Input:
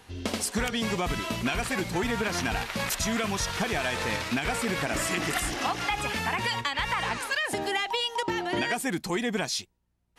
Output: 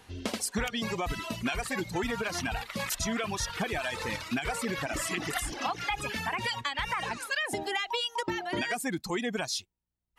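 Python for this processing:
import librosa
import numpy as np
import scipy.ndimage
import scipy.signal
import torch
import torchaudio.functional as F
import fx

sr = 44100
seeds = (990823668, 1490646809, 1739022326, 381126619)

y = fx.dereverb_blind(x, sr, rt60_s=1.5)
y = F.gain(torch.from_numpy(y), -2.0).numpy()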